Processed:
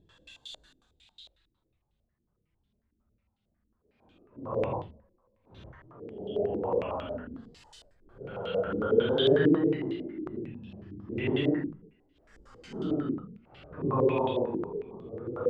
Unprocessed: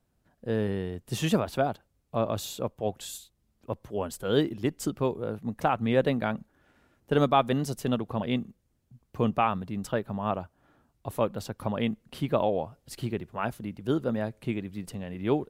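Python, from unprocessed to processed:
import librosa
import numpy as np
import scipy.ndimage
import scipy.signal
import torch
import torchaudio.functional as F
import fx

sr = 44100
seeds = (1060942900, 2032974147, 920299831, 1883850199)

y = fx.paulstretch(x, sr, seeds[0], factor=7.1, window_s=0.05, from_s=3.06)
y = fx.filter_held_lowpass(y, sr, hz=11.0, low_hz=320.0, high_hz=3400.0)
y = y * 10.0 ** (-5.0 / 20.0)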